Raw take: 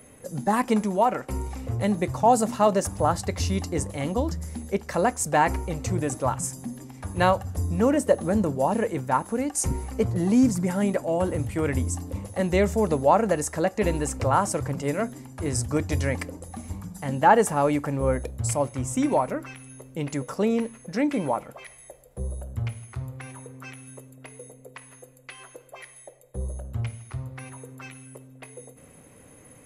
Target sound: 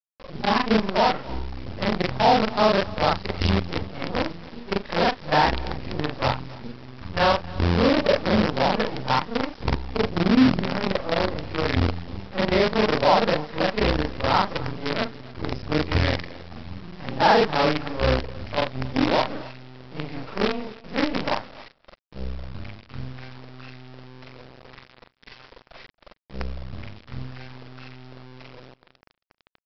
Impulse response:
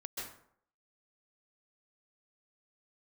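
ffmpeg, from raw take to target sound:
-af "afftfilt=real='re':imag='-im':win_size=4096:overlap=0.75,lowpass=4000,aresample=11025,acrusher=bits=5:dc=4:mix=0:aa=0.000001,aresample=44100,acontrast=38,aecho=1:1:272:0.0891"

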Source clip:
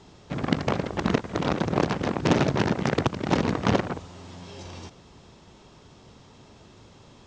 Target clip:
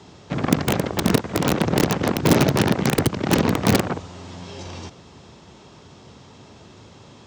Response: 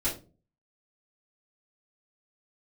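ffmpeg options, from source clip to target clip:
-filter_complex "[0:a]highpass=frequency=64:width=0.5412,highpass=frequency=64:width=1.3066,acrossover=split=430[link_01][link_02];[link_02]aeval=exprs='(mod(7.5*val(0)+1,2)-1)/7.5':channel_layout=same[link_03];[link_01][link_03]amix=inputs=2:normalize=0,volume=5.5dB"

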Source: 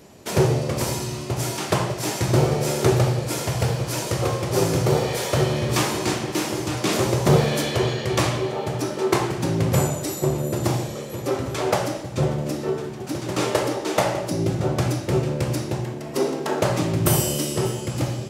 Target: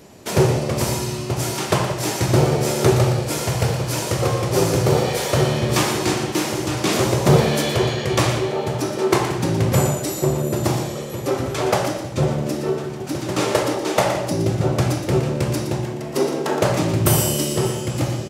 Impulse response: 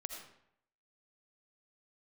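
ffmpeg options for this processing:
-af "aecho=1:1:118:0.335,volume=2.5dB"

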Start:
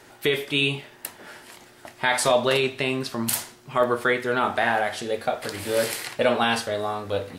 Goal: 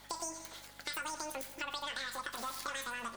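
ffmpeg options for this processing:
ffmpeg -i in.wav -filter_complex "[0:a]aeval=exprs='if(lt(val(0),0),0.708*val(0),val(0))':channel_layout=same,asplit=2[link_01][link_02];[link_02]aecho=0:1:202|404|606|808:0.15|0.0673|0.0303|0.0136[link_03];[link_01][link_03]amix=inputs=2:normalize=0,acompressor=threshold=-31dB:ratio=6,highshelf=frequency=8500:gain=3.5,asetrate=102753,aresample=44100,aeval=exprs='val(0)+0.00251*(sin(2*PI*50*n/s)+sin(2*PI*2*50*n/s)/2+sin(2*PI*3*50*n/s)/3+sin(2*PI*4*50*n/s)/4+sin(2*PI*5*50*n/s)/5)':channel_layout=same,lowshelf=frequency=100:gain=-9,volume=-5.5dB" out.wav

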